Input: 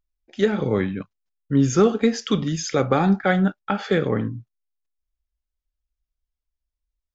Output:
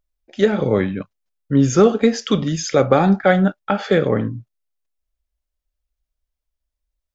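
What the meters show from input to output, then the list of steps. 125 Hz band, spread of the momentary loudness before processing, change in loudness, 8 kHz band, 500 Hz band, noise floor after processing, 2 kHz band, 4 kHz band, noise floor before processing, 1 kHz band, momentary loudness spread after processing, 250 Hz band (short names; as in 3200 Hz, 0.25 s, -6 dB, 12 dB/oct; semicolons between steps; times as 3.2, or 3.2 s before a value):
+3.0 dB, 10 LU, +4.0 dB, n/a, +5.5 dB, -82 dBFS, +3.0 dB, +3.0 dB, under -85 dBFS, +4.0 dB, 11 LU, +3.0 dB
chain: bell 590 Hz +6 dB 0.47 oct; gain +3 dB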